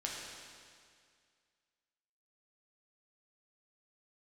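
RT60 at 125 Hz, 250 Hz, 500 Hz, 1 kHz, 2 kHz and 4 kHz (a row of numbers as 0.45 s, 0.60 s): 2.1 s, 2.1 s, 2.1 s, 2.1 s, 2.1 s, 2.0 s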